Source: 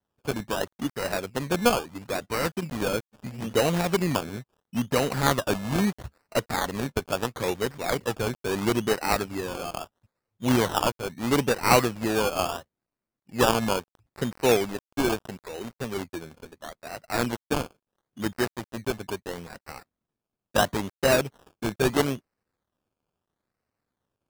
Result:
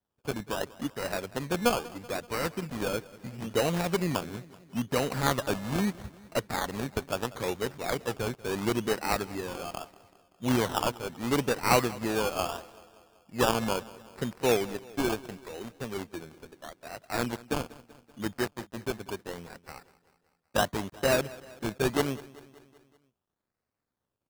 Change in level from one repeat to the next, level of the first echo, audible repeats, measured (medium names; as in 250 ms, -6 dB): -4.5 dB, -20.0 dB, 4